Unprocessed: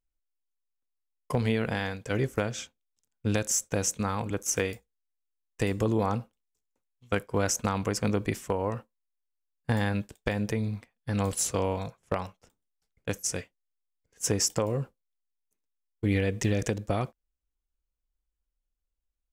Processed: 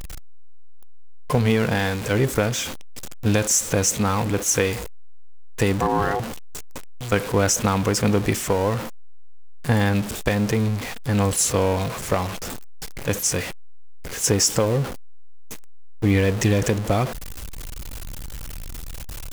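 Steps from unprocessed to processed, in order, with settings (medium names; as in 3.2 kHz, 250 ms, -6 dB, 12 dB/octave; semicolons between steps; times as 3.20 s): jump at every zero crossing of -31 dBFS; vibrato 0.48 Hz 8.3 cents; 5.80–6.20 s: ring modulator 610 Hz; trim +6 dB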